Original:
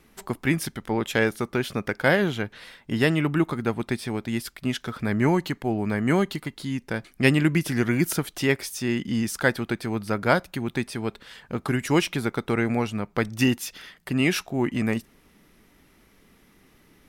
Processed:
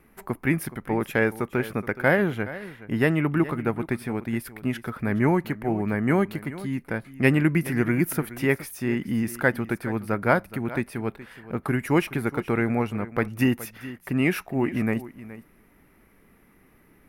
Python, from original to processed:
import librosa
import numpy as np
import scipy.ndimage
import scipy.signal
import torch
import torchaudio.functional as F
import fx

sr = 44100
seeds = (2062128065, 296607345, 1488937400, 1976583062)

y = fx.band_shelf(x, sr, hz=5000.0, db=-12.0, octaves=1.7)
y = y + 10.0 ** (-16.0 / 20.0) * np.pad(y, (int(421 * sr / 1000.0), 0))[:len(y)]